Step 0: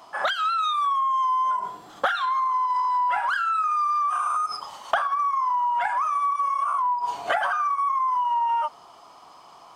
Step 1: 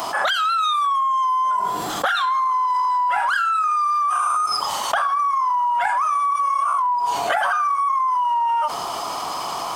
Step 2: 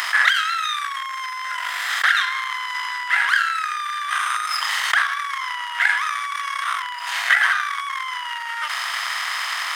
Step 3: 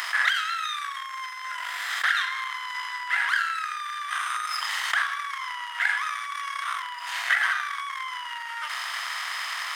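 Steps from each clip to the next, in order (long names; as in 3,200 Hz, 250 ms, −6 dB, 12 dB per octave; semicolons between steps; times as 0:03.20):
high-shelf EQ 7,300 Hz +10 dB; envelope flattener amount 70%
compressor on every frequency bin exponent 0.6; power curve on the samples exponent 1.4; high-pass with resonance 1,900 Hz, resonance Q 5.8
convolution reverb, pre-delay 3 ms, DRR 10.5 dB; level −6.5 dB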